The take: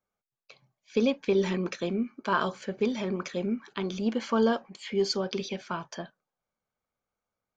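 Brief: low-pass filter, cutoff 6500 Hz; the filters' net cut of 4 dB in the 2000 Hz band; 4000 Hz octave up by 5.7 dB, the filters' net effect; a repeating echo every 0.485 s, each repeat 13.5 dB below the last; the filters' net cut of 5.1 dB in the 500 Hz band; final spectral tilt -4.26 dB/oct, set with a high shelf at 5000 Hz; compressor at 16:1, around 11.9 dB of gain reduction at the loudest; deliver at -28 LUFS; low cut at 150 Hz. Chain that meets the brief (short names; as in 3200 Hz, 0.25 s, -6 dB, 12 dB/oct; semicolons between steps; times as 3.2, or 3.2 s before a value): HPF 150 Hz; LPF 6500 Hz; bell 500 Hz -6.5 dB; bell 2000 Hz -8 dB; bell 4000 Hz +7 dB; high shelf 5000 Hz +6 dB; compressor 16:1, threshold -31 dBFS; feedback echo 0.485 s, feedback 21%, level -13.5 dB; gain +9 dB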